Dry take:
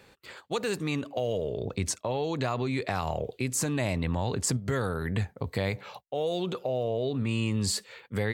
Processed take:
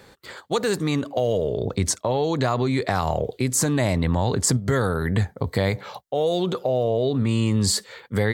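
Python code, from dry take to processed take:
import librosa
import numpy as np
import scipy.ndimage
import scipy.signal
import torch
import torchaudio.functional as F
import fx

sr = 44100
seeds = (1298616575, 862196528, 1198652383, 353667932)

y = fx.peak_eq(x, sr, hz=2600.0, db=-9.0, octaves=0.3)
y = y * librosa.db_to_amplitude(7.5)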